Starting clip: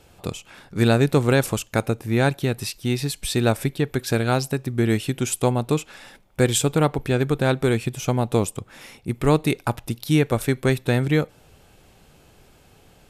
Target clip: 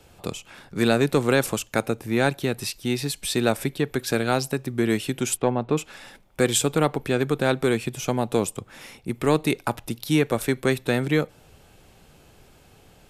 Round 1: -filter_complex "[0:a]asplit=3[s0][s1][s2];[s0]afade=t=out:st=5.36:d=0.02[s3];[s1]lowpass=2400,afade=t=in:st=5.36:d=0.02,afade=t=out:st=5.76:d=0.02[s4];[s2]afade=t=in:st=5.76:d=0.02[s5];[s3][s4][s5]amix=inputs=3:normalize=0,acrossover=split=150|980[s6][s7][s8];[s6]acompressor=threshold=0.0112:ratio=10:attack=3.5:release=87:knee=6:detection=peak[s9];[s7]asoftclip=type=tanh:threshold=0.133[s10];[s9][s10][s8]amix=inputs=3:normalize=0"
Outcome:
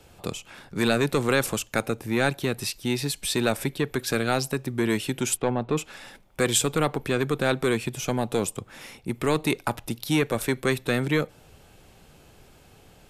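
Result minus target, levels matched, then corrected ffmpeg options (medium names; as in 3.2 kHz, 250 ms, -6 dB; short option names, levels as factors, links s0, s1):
saturation: distortion +11 dB
-filter_complex "[0:a]asplit=3[s0][s1][s2];[s0]afade=t=out:st=5.36:d=0.02[s3];[s1]lowpass=2400,afade=t=in:st=5.36:d=0.02,afade=t=out:st=5.76:d=0.02[s4];[s2]afade=t=in:st=5.76:d=0.02[s5];[s3][s4][s5]amix=inputs=3:normalize=0,acrossover=split=150|980[s6][s7][s8];[s6]acompressor=threshold=0.0112:ratio=10:attack=3.5:release=87:knee=6:detection=peak[s9];[s7]asoftclip=type=tanh:threshold=0.376[s10];[s9][s10][s8]amix=inputs=3:normalize=0"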